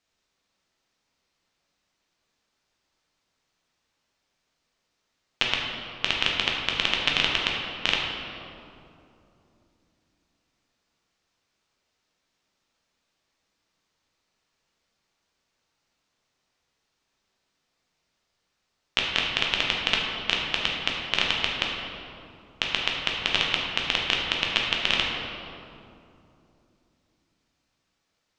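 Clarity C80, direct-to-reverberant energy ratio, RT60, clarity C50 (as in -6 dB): 2.0 dB, -2.5 dB, 2.8 s, 0.5 dB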